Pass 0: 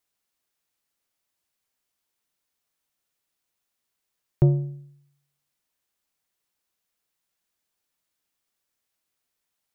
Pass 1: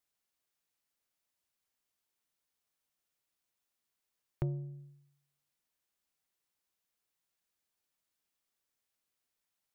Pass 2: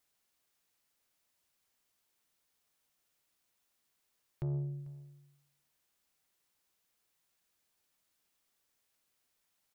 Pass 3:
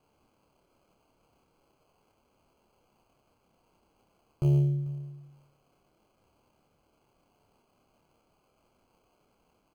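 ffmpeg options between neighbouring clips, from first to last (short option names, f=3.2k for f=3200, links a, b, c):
-af "acompressor=threshold=-34dB:ratio=2,volume=-5.5dB"
-af "alimiter=level_in=9dB:limit=-24dB:level=0:latency=1:release=35,volume=-9dB,asoftclip=type=tanh:threshold=-35dB,aecho=1:1:444:0.0891,volume=6.5dB"
-filter_complex "[0:a]acrossover=split=600[a][b];[b]acrusher=samples=24:mix=1:aa=0.000001[c];[a][c]amix=inputs=2:normalize=0,asplit=2[d][e];[e]adelay=28,volume=-4.5dB[f];[d][f]amix=inputs=2:normalize=0,volume=8dB"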